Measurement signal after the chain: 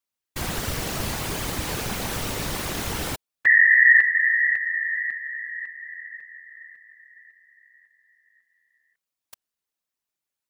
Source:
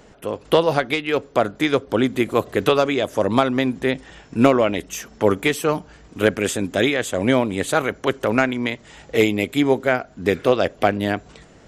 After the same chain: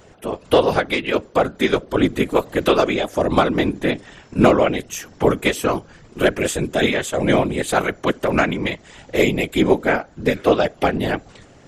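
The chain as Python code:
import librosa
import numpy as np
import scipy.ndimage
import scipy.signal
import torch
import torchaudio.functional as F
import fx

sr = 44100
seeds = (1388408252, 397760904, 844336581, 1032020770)

y = fx.whisperise(x, sr, seeds[0])
y = y * 10.0 ** (1.0 / 20.0)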